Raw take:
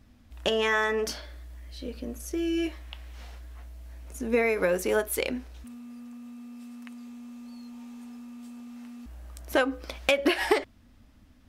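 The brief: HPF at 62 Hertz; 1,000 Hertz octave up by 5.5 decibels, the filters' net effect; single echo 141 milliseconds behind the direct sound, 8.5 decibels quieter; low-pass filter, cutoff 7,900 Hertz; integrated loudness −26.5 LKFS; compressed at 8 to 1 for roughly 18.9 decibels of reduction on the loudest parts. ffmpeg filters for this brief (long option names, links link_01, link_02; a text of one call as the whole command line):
ffmpeg -i in.wav -af "highpass=62,lowpass=7900,equalizer=frequency=1000:width_type=o:gain=7,acompressor=threshold=-37dB:ratio=8,aecho=1:1:141:0.376,volume=15.5dB" out.wav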